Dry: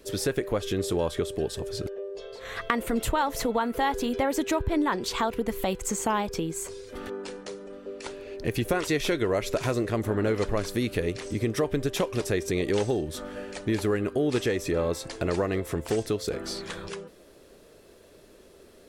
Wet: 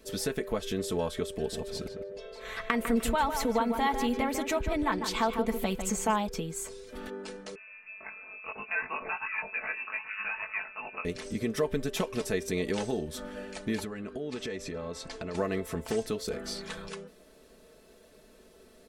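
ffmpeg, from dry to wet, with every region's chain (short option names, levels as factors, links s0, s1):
-filter_complex "[0:a]asettb=1/sr,asplit=3[s0][s1][s2];[s0]atrim=end=1.294[s3];[s1]atrim=start=1.29:end=6.16,asetpts=PTS-STARTPTS,afade=t=in:d=0.004:c=qsin,afade=t=out:st=4.866:d=0.004:c=qsin,equalizer=f=2300:t=o:w=0.25:g=4.5,asplit=2[s4][s5];[s5]adelay=151,lowpass=f=2600:p=1,volume=0.447,asplit=2[s6][s7];[s7]adelay=151,lowpass=f=2600:p=1,volume=0.24,asplit=2[s8][s9];[s9]adelay=151,lowpass=f=2600:p=1,volume=0.24[s10];[s4][s6][s8][s10]amix=inputs=4:normalize=0,atrim=end_sample=214767[s11];[s2]atrim=start=6.156[s12];[s3][s11]acrossfade=d=0.004:c1=hsin:c2=qsin[s13];[s13][s12]acrossfade=d=0.004:c1=qsin:c2=hsin,asettb=1/sr,asplit=3[s14][s15][s16];[s14]atrim=end=7.554[s17];[s15]atrim=start=7.55:end=11.05,asetpts=PTS-STARTPTS,afade=t=in:d=0.004:c=qsin,afade=t=out:st=3.496:d=0.004:c=qsin,highpass=800,asplit=2[s18][s19];[s19]adelay=20,volume=0.794[s20];[s18][s20]amix=inputs=2:normalize=0,atrim=end_sample=154350,lowpass=f=2600:t=q:w=0.5098,lowpass=f=2600:t=q:w=0.6013,lowpass=f=2600:t=q:w=0.9,lowpass=f=2600:t=q:w=2.563,afreqshift=-3000[s21];[s16]atrim=start=11.046[s22];[s17][s21]acrossfade=d=0.004:c1=hsin:c2=qsin[s23];[s23][s22]acrossfade=d=0.004:c1=qsin:c2=hsin,asettb=1/sr,asplit=3[s24][s25][s26];[s24]atrim=end=13.844[s27];[s25]atrim=start=13.84:end=15.35,asetpts=PTS-STARTPTS,afade=t=in:d=0.004:c=qsin,afade=t=out:st=1.506:d=0.004:c=qsin,lowpass=7200,acompressor=threshold=0.0355:ratio=6:attack=3.2:release=140:knee=1:detection=peak[s28];[s26]atrim=start=15.346[s29];[s27][s28]acrossfade=d=0.004:c1=hsin:c2=qsin[s30];[s30][s29]acrossfade=d=0.004:c1=qsin:c2=hsin,bandreject=f=410:w=12,aecho=1:1:4.6:0.58,volume=0.631"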